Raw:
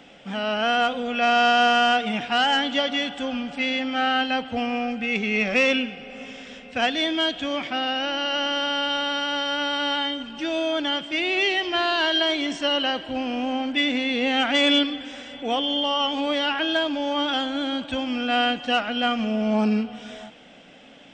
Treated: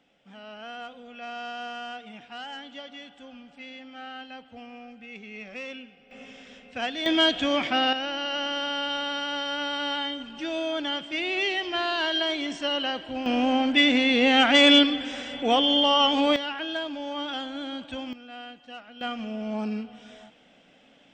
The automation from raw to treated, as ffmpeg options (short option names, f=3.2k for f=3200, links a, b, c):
-af "asetnsamples=n=441:p=0,asendcmd='6.11 volume volume -7.5dB;7.06 volume volume 2.5dB;7.93 volume volume -4.5dB;13.26 volume volume 3dB;16.36 volume volume -8dB;18.13 volume volume -20dB;19.01 volume volume -9dB',volume=-18dB"